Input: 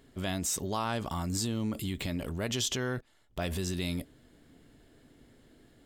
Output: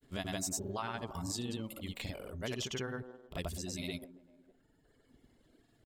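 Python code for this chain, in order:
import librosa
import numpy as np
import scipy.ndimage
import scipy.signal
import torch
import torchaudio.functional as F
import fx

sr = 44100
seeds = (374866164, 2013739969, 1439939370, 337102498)

y = fx.dereverb_blind(x, sr, rt60_s=1.8)
y = fx.echo_wet_bandpass(y, sr, ms=199, feedback_pct=41, hz=500.0, wet_db=-9)
y = fx.granulator(y, sr, seeds[0], grain_ms=100.0, per_s=20.0, spray_ms=100.0, spread_st=0)
y = y * librosa.db_to_amplitude(-3.0)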